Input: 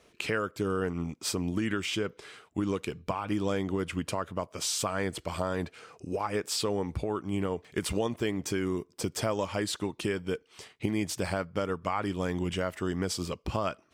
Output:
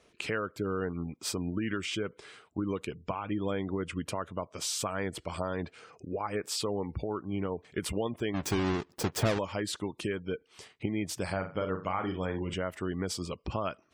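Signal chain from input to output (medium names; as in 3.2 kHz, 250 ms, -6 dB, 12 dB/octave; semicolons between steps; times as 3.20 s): 8.34–9.39 s: square wave that keeps the level; 11.25–12.54 s: flutter echo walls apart 7.3 m, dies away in 0.35 s; spectral gate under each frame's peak -30 dB strong; trim -2.5 dB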